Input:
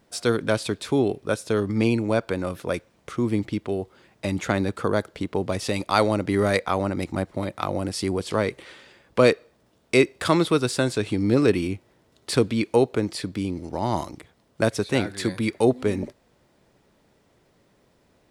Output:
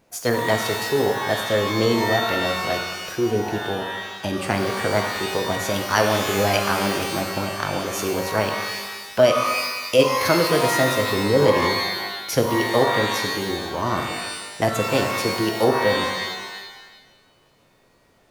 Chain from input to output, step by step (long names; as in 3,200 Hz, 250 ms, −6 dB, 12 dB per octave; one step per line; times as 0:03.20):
formants moved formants +4 semitones
reverb with rising layers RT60 1.2 s, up +12 semitones, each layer −2 dB, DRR 4.5 dB